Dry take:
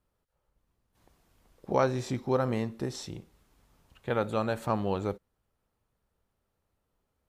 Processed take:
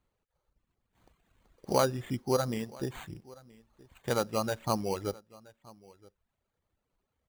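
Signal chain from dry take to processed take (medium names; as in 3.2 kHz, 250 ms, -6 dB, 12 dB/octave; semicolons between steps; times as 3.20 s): sample-rate reducer 5.3 kHz, jitter 0%; reverb removal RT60 1.3 s; delay 974 ms -23 dB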